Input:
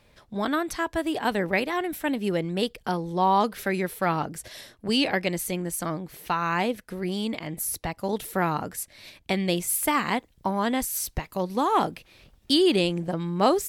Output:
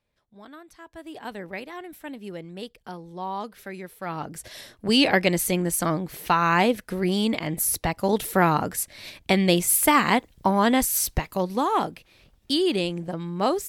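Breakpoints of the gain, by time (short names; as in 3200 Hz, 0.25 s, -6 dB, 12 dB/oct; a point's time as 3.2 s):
0.77 s -19 dB
1.18 s -10.5 dB
3.97 s -10.5 dB
4.34 s -1 dB
5.13 s +5.5 dB
11.12 s +5.5 dB
11.91 s -2.5 dB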